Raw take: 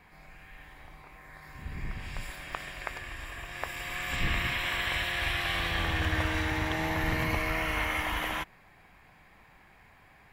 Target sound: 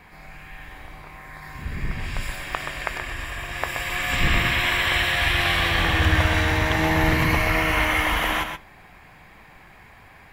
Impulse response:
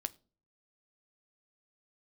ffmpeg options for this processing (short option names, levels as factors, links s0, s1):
-filter_complex "[0:a]asplit=2[s0][s1];[1:a]atrim=start_sample=2205,adelay=126[s2];[s1][s2]afir=irnorm=-1:irlink=0,volume=0.501[s3];[s0][s3]amix=inputs=2:normalize=0,volume=2.66"